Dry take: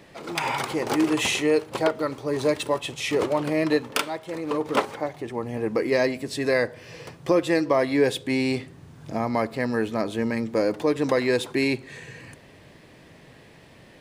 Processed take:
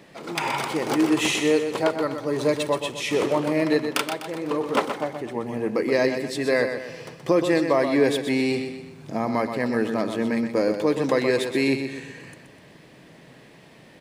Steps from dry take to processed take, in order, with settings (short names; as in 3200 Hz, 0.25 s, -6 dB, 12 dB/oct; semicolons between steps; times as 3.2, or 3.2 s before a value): resonant low shelf 120 Hz -6 dB, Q 1.5; on a send: feedback echo 0.125 s, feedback 44%, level -8 dB